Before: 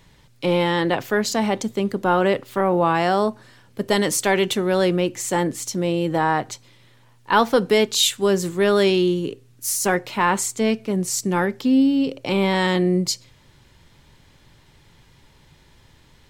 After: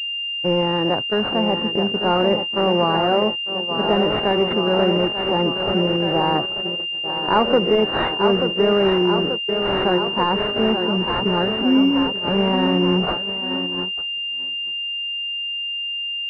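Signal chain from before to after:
peak hold with a rise ahead of every peak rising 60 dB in 0.31 s
on a send: feedback echo with a high-pass in the loop 884 ms, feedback 74%, high-pass 170 Hz, level −6 dB
on the sum: noise gate −22 dBFS, range −40 dB
switching amplifier with a slow clock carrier 2,800 Hz

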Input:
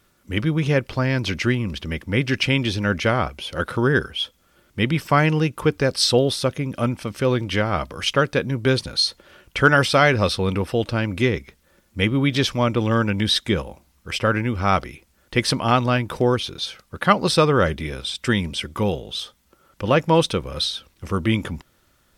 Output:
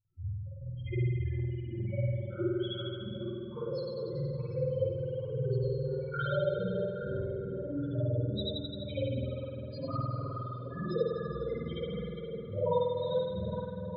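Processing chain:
loose part that buzzes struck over −29 dBFS, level −12 dBFS
hard clipping −13 dBFS, distortion −14 dB
spectral peaks only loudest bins 1
gate pattern "xx..x.xx.x...x" 74 BPM −24 dB
time stretch by phase vocoder 0.63×
parametric band 230 Hz −13.5 dB 0.32 octaves
on a send: tape delay 408 ms, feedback 85%, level −4 dB, low-pass 1,200 Hz
on the sum: spring reverb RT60 1.7 s, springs 49 ms, chirp 45 ms, DRR −10 dB
auto-filter bell 1.2 Hz 280–1,700 Hz +6 dB
level −7.5 dB

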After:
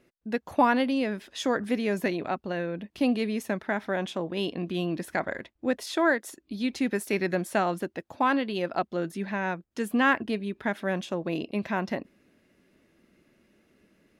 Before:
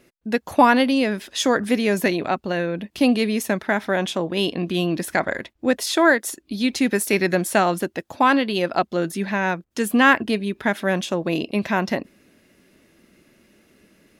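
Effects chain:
high-shelf EQ 3,800 Hz −7.5 dB
level −7 dB

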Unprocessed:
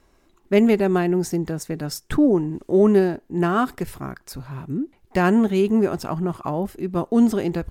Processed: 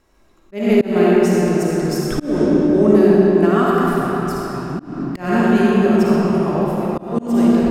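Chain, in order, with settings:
comb and all-pass reverb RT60 4.2 s, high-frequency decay 0.7×, pre-delay 15 ms, DRR −6 dB
volume swells 222 ms
level −1 dB

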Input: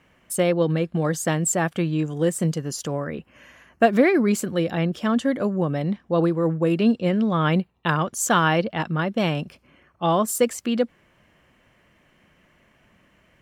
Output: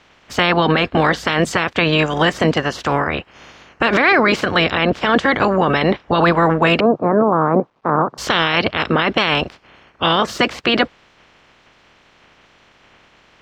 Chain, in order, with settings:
ceiling on every frequency bin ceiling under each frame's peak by 26 dB
0:06.80–0:08.18: elliptic band-pass filter 130–1,200 Hz, stop band 40 dB
bit reduction 12 bits
high-frequency loss of the air 180 metres
boost into a limiter +14.5 dB
level −3.5 dB

